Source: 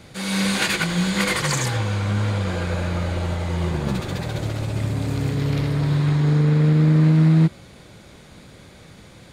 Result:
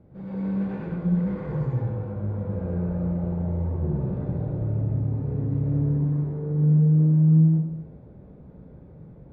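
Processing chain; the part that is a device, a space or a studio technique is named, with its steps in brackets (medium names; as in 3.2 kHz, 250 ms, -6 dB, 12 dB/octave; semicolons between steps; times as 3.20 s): television next door (compression 4:1, threshold -22 dBFS, peak gain reduction 8.5 dB; low-pass 520 Hz 12 dB/octave; reverberation RT60 0.80 s, pre-delay 96 ms, DRR -6 dB); trim -7.5 dB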